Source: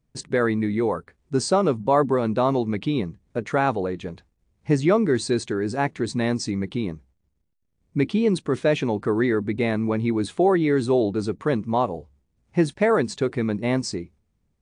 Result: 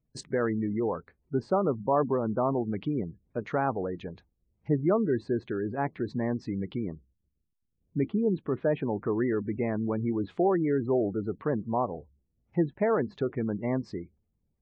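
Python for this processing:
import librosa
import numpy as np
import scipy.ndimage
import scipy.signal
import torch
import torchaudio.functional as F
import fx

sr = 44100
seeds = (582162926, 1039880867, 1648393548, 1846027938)

y = fx.env_lowpass_down(x, sr, base_hz=1600.0, full_db=-20.5)
y = fx.spec_gate(y, sr, threshold_db=-30, keep='strong')
y = F.gain(torch.from_numpy(y), -6.0).numpy()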